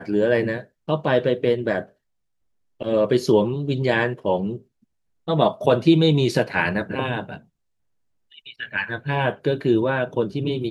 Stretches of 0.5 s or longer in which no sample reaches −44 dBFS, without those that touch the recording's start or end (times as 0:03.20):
0:01.89–0:02.81
0:04.62–0:05.27
0:07.40–0:08.32